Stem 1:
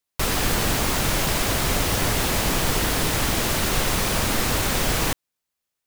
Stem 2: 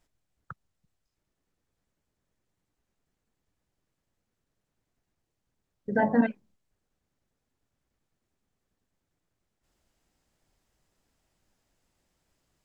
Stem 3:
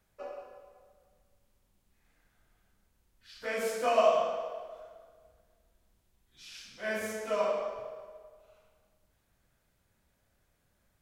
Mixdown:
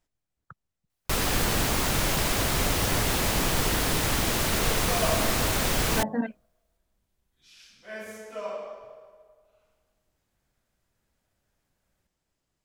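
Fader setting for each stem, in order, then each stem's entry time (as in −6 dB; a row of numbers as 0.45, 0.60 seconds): −3.0, −5.5, −5.0 decibels; 0.90, 0.00, 1.05 seconds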